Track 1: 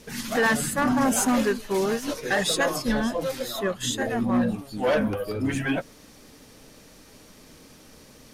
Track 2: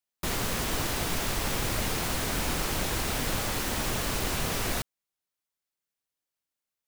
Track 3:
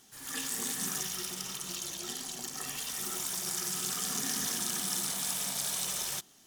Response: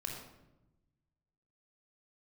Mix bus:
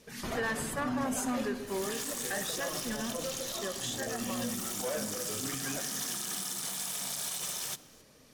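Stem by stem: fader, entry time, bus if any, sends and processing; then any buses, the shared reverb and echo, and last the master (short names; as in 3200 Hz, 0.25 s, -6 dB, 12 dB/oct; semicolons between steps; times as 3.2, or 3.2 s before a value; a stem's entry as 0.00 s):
-11.0 dB, 0.00 s, send -7 dB, dry
-2.0 dB, 0.00 s, no send, loudest bins only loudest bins 64; auto duck -17 dB, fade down 1.80 s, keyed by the first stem
-0.5 dB, 1.55 s, send -15 dB, dry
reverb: on, RT60 0.95 s, pre-delay 24 ms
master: low shelf 66 Hz -9.5 dB; limiter -25 dBFS, peak gain reduction 8 dB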